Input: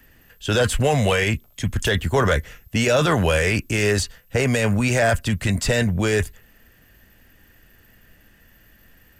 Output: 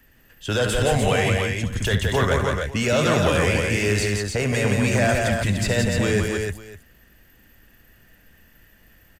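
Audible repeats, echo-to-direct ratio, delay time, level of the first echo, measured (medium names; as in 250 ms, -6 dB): 5, 0.0 dB, 67 ms, -10.0 dB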